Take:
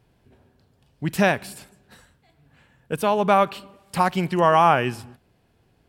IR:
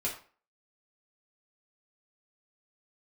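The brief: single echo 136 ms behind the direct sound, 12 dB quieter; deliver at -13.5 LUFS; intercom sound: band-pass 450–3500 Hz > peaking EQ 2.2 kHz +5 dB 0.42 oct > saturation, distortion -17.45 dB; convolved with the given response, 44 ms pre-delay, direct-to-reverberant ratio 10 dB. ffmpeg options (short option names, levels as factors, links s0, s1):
-filter_complex "[0:a]aecho=1:1:136:0.251,asplit=2[s0][s1];[1:a]atrim=start_sample=2205,adelay=44[s2];[s1][s2]afir=irnorm=-1:irlink=0,volume=0.188[s3];[s0][s3]amix=inputs=2:normalize=0,highpass=450,lowpass=3500,equalizer=f=2200:t=o:w=0.42:g=5,asoftclip=threshold=0.355,volume=2.82"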